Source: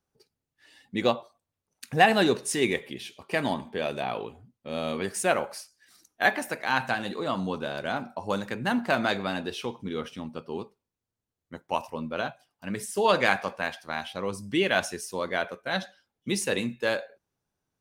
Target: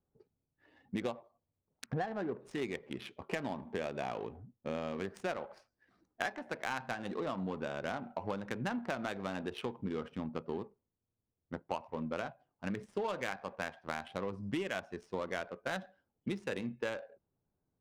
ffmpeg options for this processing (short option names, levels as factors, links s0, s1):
-filter_complex "[0:a]acompressor=threshold=0.0178:ratio=8,asplit=3[s0][s1][s2];[s0]afade=t=out:st=1.85:d=0.02[s3];[s1]lowpass=f=1800:w=0.5412,lowpass=f=1800:w=1.3066,afade=t=in:st=1.85:d=0.02,afade=t=out:st=2.4:d=0.02[s4];[s2]afade=t=in:st=2.4:d=0.02[s5];[s3][s4][s5]amix=inputs=3:normalize=0,adynamicsmooth=sensitivity=8:basefreq=890,volume=1.19"